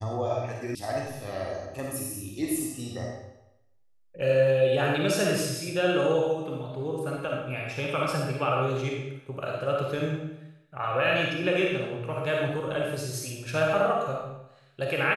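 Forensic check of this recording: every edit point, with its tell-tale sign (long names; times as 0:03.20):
0:00.75: cut off before it has died away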